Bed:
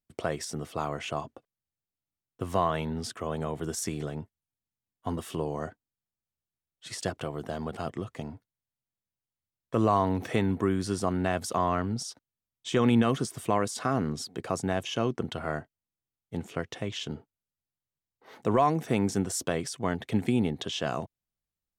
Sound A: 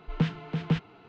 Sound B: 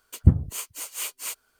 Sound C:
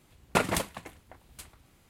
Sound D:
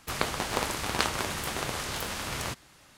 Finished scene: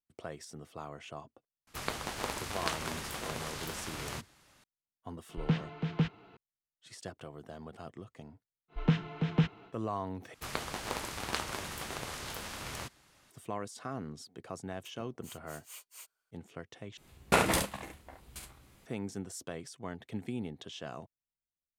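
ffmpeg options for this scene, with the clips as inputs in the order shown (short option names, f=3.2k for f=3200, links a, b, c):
-filter_complex "[4:a]asplit=2[a][b];[1:a]asplit=2[c][d];[0:a]volume=-12dB[e];[d]bandreject=f=4.6k:w=14[f];[2:a]highpass=530[g];[3:a]aecho=1:1:15|45|70:0.668|0.473|0.596[h];[e]asplit=3[i][j][k];[i]atrim=end=10.344[l];[b]atrim=end=2.97,asetpts=PTS-STARTPTS,volume=-7.5dB[m];[j]atrim=start=13.306:end=16.974[n];[h]atrim=end=1.89,asetpts=PTS-STARTPTS,volume=-2dB[o];[k]atrim=start=18.856[p];[a]atrim=end=2.97,asetpts=PTS-STARTPTS,volume=-7dB,afade=t=in:d=0.004:c=hsin,afade=t=out:st=2.966:d=0.004:c=hsin,adelay=1670[q];[c]atrim=end=1.08,asetpts=PTS-STARTPTS,volume=-3.5dB,afade=t=in:d=0.004:c=hsin,afade=t=out:st=1.076:d=0.004:c=hsin,adelay=233289S[r];[f]atrim=end=1.08,asetpts=PTS-STARTPTS,volume=-1dB,afade=t=in:d=0.1,afade=t=out:st=0.98:d=0.1,adelay=8680[s];[g]atrim=end=1.59,asetpts=PTS-STARTPTS,volume=-17.5dB,afade=t=in:d=0.004:c=hsin,afade=t=out:st=1.586:d=0.004:c=hsin,adelay=14720[t];[l][m]acrossfade=d=0.004:c1=hsin:c2=hsin[u];[u][n]acrossfade=d=0.004:c1=hsin:c2=hsin[v];[v][o]acrossfade=d=0.004:c1=hsin:c2=hsin[w];[w][p]acrossfade=d=0.004:c1=hsin:c2=hsin[x];[x][q][r][s][t]amix=inputs=5:normalize=0"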